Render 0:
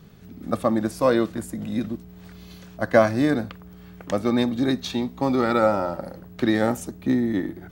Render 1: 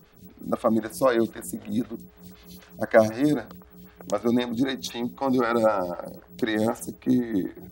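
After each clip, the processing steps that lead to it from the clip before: treble shelf 5 kHz +8 dB; lamp-driven phase shifter 3.9 Hz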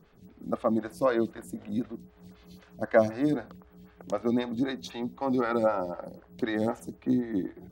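low-pass 3 kHz 6 dB/octave; trim -4 dB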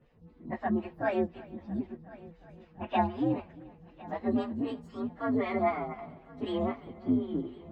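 frequency axis rescaled in octaves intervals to 128%; distance through air 240 m; multi-head delay 352 ms, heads first and third, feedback 47%, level -21.5 dB

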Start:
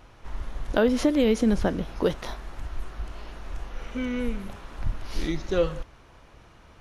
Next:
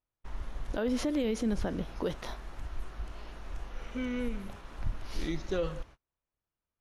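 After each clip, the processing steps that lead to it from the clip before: gate -42 dBFS, range -36 dB; peak limiter -17 dBFS, peak gain reduction 9.5 dB; trim -5 dB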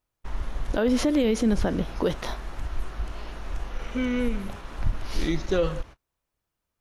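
endings held to a fixed fall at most 590 dB/s; trim +8 dB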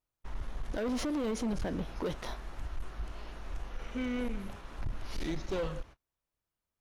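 hard clipper -22 dBFS, distortion -11 dB; trim -7.5 dB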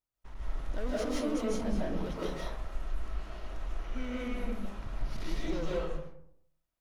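reverberation RT60 0.70 s, pre-delay 115 ms, DRR -6 dB; trim -6 dB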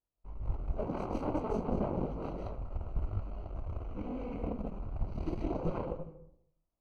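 chorus 2.8 Hz, delay 18 ms, depth 6.2 ms; Chebyshev shaper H 7 -7 dB, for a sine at -21.5 dBFS; boxcar filter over 25 samples

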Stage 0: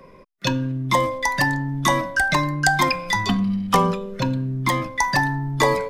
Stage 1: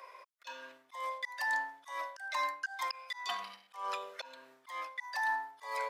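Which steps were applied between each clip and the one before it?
high-pass 710 Hz 24 dB/octave; reverse; compression 12:1, threshold -28 dBFS, peak gain reduction 15.5 dB; reverse; slow attack 305 ms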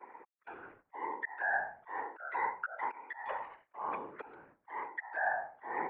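mistuned SSB -120 Hz 270–2200 Hz; gate -60 dBFS, range -11 dB; whisper effect

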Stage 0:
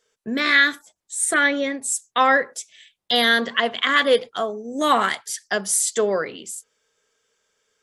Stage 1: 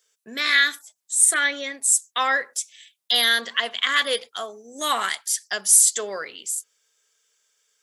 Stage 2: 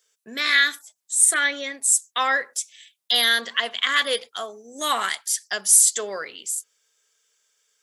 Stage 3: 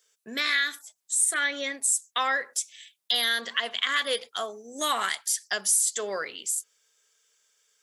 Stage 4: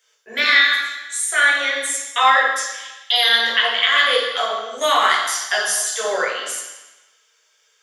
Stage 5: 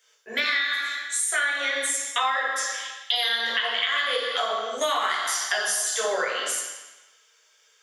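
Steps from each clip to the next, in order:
tilt EQ +4 dB/octave; trim -6 dB
no audible change
compression 2.5:1, threshold -24 dBFS, peak gain reduction 9.5 dB
high-pass 410 Hz 12 dB/octave; reverberation RT60 1.1 s, pre-delay 3 ms, DRR -3.5 dB
compression 6:1, threshold -22 dBFS, peak gain reduction 12 dB

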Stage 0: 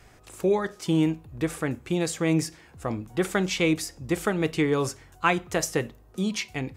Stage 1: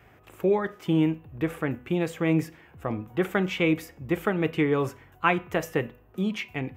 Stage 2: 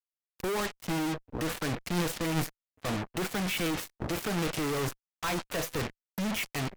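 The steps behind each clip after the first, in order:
high-pass 67 Hz; high-order bell 6.5 kHz -14.5 dB; de-hum 247 Hz, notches 12
spectral noise reduction 16 dB; fuzz box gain 40 dB, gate -44 dBFS; Chebyshev shaper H 3 -6 dB, 4 -23 dB, 8 -26 dB, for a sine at -10 dBFS; trim -8.5 dB

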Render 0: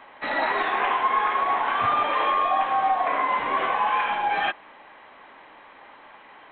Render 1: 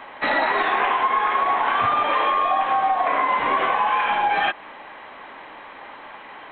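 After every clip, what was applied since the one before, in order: compression 6:1, threshold -25 dBFS, peak gain reduction 7.5 dB; trim +8 dB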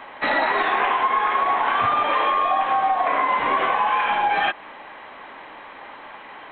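no audible change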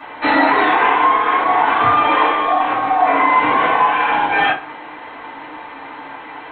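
FDN reverb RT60 0.36 s, low-frequency decay 1.25×, high-frequency decay 0.7×, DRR -8.5 dB; trim -2.5 dB

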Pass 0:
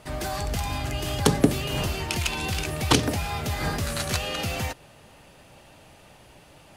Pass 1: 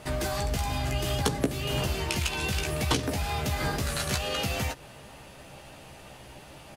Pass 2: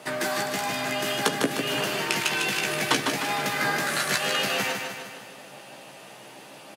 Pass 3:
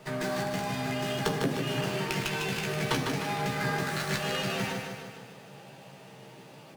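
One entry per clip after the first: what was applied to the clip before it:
compression 2.5:1, threshold -32 dBFS, peak gain reduction 13.5 dB; doubling 15 ms -6 dB; trim +3 dB
Bessel high-pass 240 Hz, order 8; dynamic bell 1.7 kHz, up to +7 dB, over -50 dBFS, Q 1.6; feedback delay 152 ms, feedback 55%, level -5.5 dB; trim +2.5 dB
on a send at -4 dB: reverberation RT60 1.0 s, pre-delay 3 ms; on the sum: sliding maximum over 3 samples; trim -7.5 dB

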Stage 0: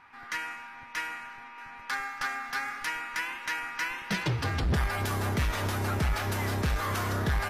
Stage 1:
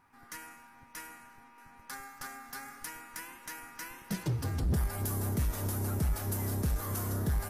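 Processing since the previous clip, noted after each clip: FFT filter 250 Hz 0 dB, 2.4 kHz -14 dB, 3.7 kHz -11 dB, 11 kHz +8 dB; trim -2 dB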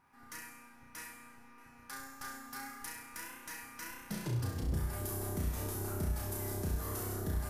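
compression 3:1, threshold -32 dBFS, peak gain reduction 4.5 dB; on a send: flutter echo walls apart 5.7 m, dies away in 0.63 s; on the sum: trim -4 dB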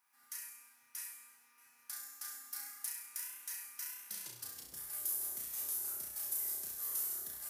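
differentiator; trim +3.5 dB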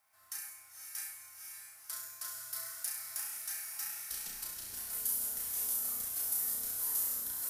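echo that smears into a reverb 513 ms, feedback 46%, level -5 dB; frequency shift -150 Hz; trim +3 dB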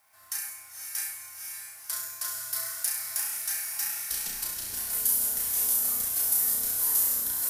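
band-stop 1.3 kHz, Q 23; trim +9 dB

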